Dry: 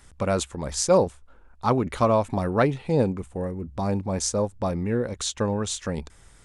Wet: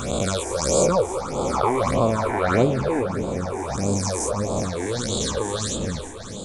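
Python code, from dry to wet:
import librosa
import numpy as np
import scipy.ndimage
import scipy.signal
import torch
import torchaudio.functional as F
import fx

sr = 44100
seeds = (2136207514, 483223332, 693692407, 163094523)

y = fx.spec_swells(x, sr, rise_s=2.11)
y = fx.echo_alternate(y, sr, ms=181, hz=1400.0, feedback_pct=88, wet_db=-11.0)
y = fx.phaser_stages(y, sr, stages=8, low_hz=160.0, high_hz=1800.0, hz=1.6, feedback_pct=25)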